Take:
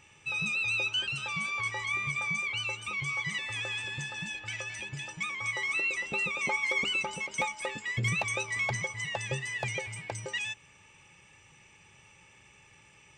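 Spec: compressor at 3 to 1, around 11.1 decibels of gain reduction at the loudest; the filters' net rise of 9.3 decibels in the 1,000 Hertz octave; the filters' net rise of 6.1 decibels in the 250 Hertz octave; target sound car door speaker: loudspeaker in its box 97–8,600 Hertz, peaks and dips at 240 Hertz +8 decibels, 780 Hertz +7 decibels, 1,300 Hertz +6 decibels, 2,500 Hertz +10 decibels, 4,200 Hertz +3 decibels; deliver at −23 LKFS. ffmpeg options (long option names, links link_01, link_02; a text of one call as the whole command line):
ffmpeg -i in.wav -af "equalizer=frequency=250:width_type=o:gain=5,equalizer=frequency=1000:width_type=o:gain=5,acompressor=threshold=-40dB:ratio=3,highpass=97,equalizer=frequency=240:width_type=q:width=4:gain=8,equalizer=frequency=780:width_type=q:width=4:gain=7,equalizer=frequency=1300:width_type=q:width=4:gain=6,equalizer=frequency=2500:width_type=q:width=4:gain=10,equalizer=frequency=4200:width_type=q:width=4:gain=3,lowpass=frequency=8600:width=0.5412,lowpass=frequency=8600:width=1.3066,volume=9dB" out.wav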